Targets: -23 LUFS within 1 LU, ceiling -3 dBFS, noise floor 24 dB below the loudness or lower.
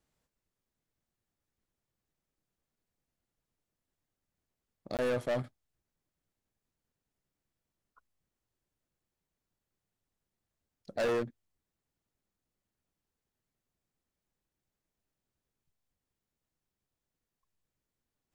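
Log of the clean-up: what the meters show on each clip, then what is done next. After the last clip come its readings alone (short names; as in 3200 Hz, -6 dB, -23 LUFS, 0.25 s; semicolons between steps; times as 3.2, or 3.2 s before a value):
clipped 0.8%; flat tops at -27.5 dBFS; dropouts 1; longest dropout 18 ms; loudness -34.5 LUFS; peak -27.5 dBFS; loudness target -23.0 LUFS
-> clip repair -27.5 dBFS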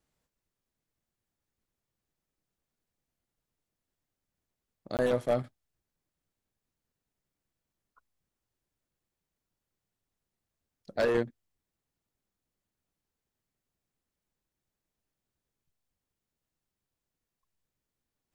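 clipped 0.0%; dropouts 1; longest dropout 18 ms
-> interpolate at 4.97, 18 ms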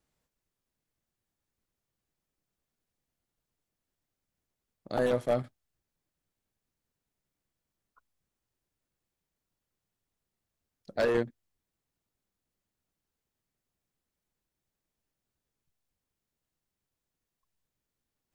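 dropouts 0; loudness -30.5 LUFS; peak -18.5 dBFS; loudness target -23.0 LUFS
-> gain +7.5 dB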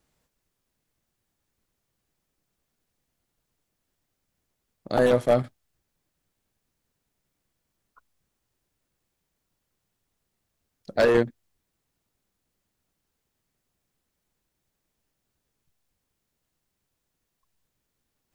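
loudness -23.0 LUFS; peak -11.0 dBFS; noise floor -80 dBFS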